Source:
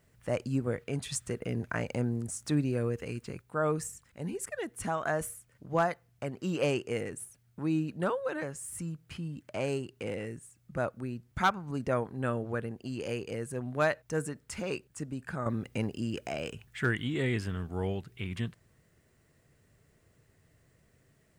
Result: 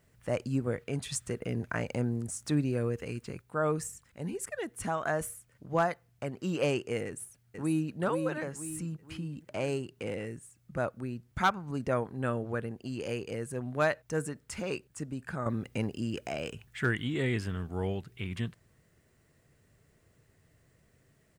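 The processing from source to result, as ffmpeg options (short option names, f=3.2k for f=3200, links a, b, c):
-filter_complex "[0:a]asplit=2[a][b];[b]afade=t=in:st=7.06:d=0.01,afade=t=out:st=8:d=0.01,aecho=0:1:480|960|1440|1920|2400:0.530884|0.238898|0.107504|0.0483768|0.0217696[c];[a][c]amix=inputs=2:normalize=0"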